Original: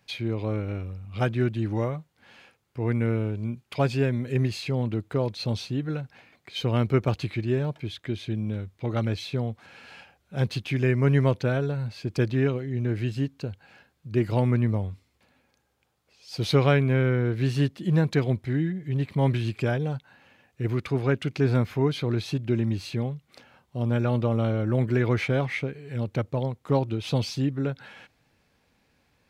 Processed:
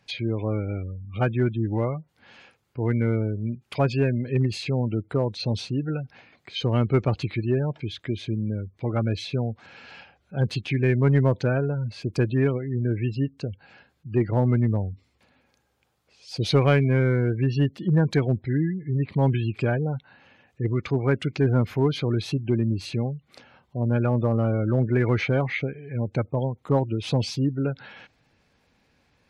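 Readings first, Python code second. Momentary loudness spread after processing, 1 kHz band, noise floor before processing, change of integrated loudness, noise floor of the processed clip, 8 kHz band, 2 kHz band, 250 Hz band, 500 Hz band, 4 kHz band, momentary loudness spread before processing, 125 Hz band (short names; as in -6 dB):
10 LU, +1.0 dB, -69 dBFS, +1.5 dB, -67 dBFS, n/a, +1.0 dB, +1.5 dB, +1.5 dB, +1.0 dB, 10 LU, +2.0 dB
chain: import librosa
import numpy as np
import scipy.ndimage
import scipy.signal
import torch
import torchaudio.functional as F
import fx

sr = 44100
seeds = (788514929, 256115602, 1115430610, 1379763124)

p1 = fx.spec_gate(x, sr, threshold_db=-30, keep='strong')
p2 = np.clip(p1, -10.0 ** (-16.5 / 20.0), 10.0 ** (-16.5 / 20.0))
p3 = p1 + (p2 * librosa.db_to_amplitude(-3.5))
y = p3 * librosa.db_to_amplitude(-2.5)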